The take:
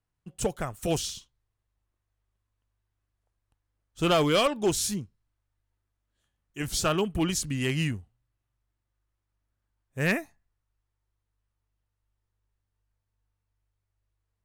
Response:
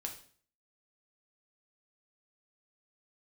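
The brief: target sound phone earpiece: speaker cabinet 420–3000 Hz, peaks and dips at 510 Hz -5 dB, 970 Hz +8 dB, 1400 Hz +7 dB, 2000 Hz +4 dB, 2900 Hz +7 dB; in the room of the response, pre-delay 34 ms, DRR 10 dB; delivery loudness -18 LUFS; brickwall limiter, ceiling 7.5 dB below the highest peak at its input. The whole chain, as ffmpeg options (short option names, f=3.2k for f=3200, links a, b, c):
-filter_complex "[0:a]alimiter=limit=-24dB:level=0:latency=1,asplit=2[a][b];[1:a]atrim=start_sample=2205,adelay=34[c];[b][c]afir=irnorm=-1:irlink=0,volume=-9dB[d];[a][d]amix=inputs=2:normalize=0,highpass=420,equalizer=f=510:t=q:w=4:g=-5,equalizer=f=970:t=q:w=4:g=8,equalizer=f=1.4k:t=q:w=4:g=7,equalizer=f=2k:t=q:w=4:g=4,equalizer=f=2.9k:t=q:w=4:g=7,lowpass=f=3k:w=0.5412,lowpass=f=3k:w=1.3066,volume=16dB"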